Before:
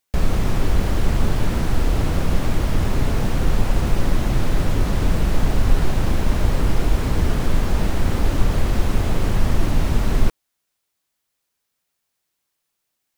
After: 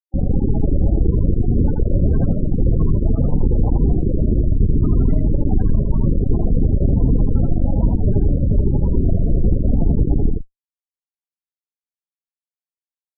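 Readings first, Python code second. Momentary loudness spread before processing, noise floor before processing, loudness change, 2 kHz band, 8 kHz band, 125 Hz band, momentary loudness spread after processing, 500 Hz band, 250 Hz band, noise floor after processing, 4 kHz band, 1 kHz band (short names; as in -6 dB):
1 LU, -77 dBFS, +3.5 dB, under -25 dB, under -40 dB, +4.5 dB, 2 LU, +1.5 dB, +5.5 dB, under -85 dBFS, under -40 dB, -10.0 dB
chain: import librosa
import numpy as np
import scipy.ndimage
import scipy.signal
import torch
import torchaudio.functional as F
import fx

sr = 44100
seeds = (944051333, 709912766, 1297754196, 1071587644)

y = fx.octave_divider(x, sr, octaves=1, level_db=-2.0)
y = scipy.signal.sosfilt(scipy.signal.butter(12, 4000.0, 'lowpass', fs=sr, output='sos'), y)
y = fx.fuzz(y, sr, gain_db=32.0, gate_db=-33.0)
y = fx.spec_topn(y, sr, count=16)
y = y + 10.0 ** (-3.5 / 20.0) * np.pad(y, (int(82 * sr / 1000.0), 0))[:len(y)]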